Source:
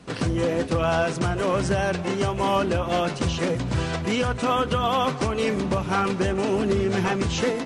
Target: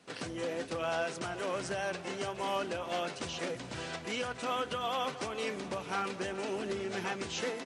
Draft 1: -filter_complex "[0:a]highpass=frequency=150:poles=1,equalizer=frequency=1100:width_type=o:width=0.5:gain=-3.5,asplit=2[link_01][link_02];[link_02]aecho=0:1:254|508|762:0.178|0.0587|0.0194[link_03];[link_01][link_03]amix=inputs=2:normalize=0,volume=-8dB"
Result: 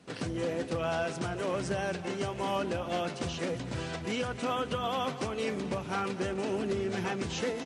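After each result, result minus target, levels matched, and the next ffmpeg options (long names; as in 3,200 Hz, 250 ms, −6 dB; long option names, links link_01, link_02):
echo 161 ms early; 125 Hz band +6.0 dB
-filter_complex "[0:a]highpass=frequency=150:poles=1,equalizer=frequency=1100:width_type=o:width=0.5:gain=-3.5,asplit=2[link_01][link_02];[link_02]aecho=0:1:415|830|1245:0.178|0.0587|0.0194[link_03];[link_01][link_03]amix=inputs=2:normalize=0,volume=-8dB"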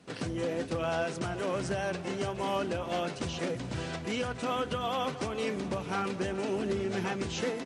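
125 Hz band +6.0 dB
-filter_complex "[0:a]highpass=frequency=570:poles=1,equalizer=frequency=1100:width_type=o:width=0.5:gain=-3.5,asplit=2[link_01][link_02];[link_02]aecho=0:1:415|830|1245:0.178|0.0587|0.0194[link_03];[link_01][link_03]amix=inputs=2:normalize=0,volume=-8dB"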